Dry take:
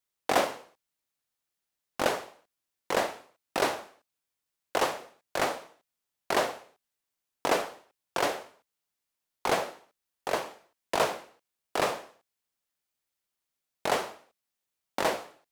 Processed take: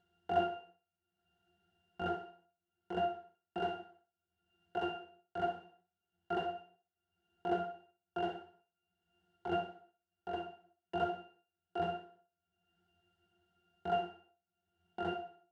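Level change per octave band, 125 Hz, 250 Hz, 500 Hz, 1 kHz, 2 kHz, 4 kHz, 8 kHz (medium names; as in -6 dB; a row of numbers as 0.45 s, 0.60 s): -2.0 dB, -4.0 dB, -8.0 dB, -7.0 dB, -14.5 dB, -14.5 dB, under -30 dB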